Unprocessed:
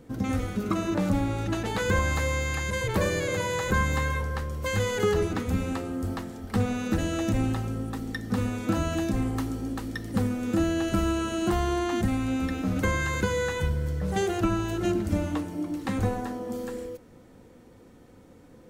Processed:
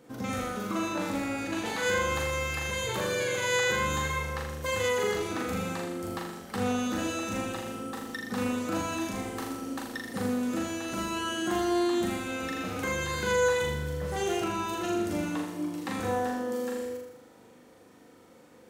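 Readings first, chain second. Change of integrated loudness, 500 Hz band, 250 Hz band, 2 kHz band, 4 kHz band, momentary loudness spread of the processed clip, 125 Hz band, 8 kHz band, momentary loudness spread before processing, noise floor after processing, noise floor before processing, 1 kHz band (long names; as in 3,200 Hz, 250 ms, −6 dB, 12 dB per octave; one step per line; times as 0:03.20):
−2.5 dB, −0.5 dB, −4.0 dB, 0.0 dB, +2.0 dB, 9 LU, −10.0 dB, +1.5 dB, 7 LU, −55 dBFS, −52 dBFS, 0.0 dB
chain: high-pass filter 500 Hz 6 dB per octave
brickwall limiter −23.5 dBFS, peak gain reduction 7 dB
flutter between parallel walls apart 6.9 metres, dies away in 0.79 s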